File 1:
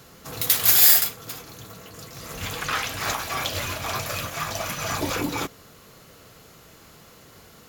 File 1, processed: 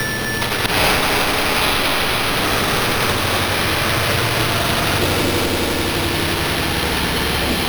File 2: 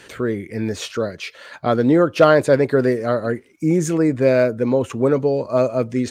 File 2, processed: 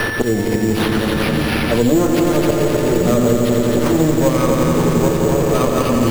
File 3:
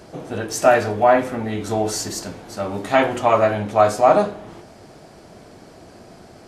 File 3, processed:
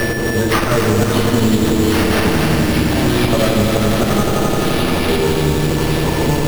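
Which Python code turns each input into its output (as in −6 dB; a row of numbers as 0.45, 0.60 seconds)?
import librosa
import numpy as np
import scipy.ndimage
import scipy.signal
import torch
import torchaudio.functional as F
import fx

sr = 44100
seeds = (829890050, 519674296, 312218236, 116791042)

p1 = fx.lower_of_two(x, sr, delay_ms=8.8)
p2 = fx.band_shelf(p1, sr, hz=1400.0, db=-9.0, octaves=2.4)
p3 = fx.auto_swell(p2, sr, attack_ms=394.0)
p4 = p3 + 10.0 ** (-50.0 / 20.0) * np.sin(2.0 * np.pi * 9100.0 * np.arange(len(p3)) / sr)
p5 = fx.echo_pitch(p4, sr, ms=389, semitones=-6, count=3, db_per_echo=-6.0)
p6 = fx.doubler(p5, sr, ms=33.0, db=-11.5)
p7 = p6 + fx.echo_heads(p6, sr, ms=86, heads='all three', feedback_pct=71, wet_db=-8.0, dry=0)
p8 = np.repeat(p7[::6], 6)[:len(p7)]
p9 = fx.band_squash(p8, sr, depth_pct=100)
y = p9 * 10.0 ** (-2 / 20.0) / np.max(np.abs(p9))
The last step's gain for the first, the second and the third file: +9.5, +6.5, +12.0 decibels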